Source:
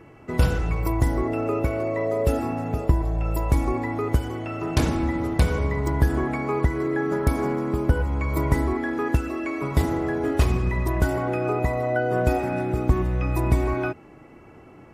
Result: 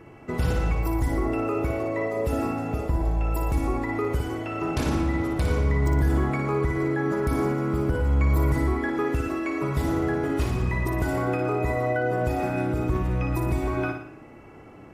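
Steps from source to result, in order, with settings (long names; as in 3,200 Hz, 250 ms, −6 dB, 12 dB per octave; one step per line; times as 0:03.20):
brickwall limiter −16.5 dBFS, peak gain reduction 8 dB
flutter between parallel walls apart 10 metres, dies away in 0.59 s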